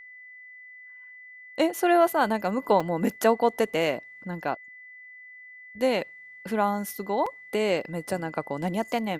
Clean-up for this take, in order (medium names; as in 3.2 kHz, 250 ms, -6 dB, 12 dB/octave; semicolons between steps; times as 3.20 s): band-stop 2 kHz, Q 30; interpolate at 2.80/7.26 s, 4.7 ms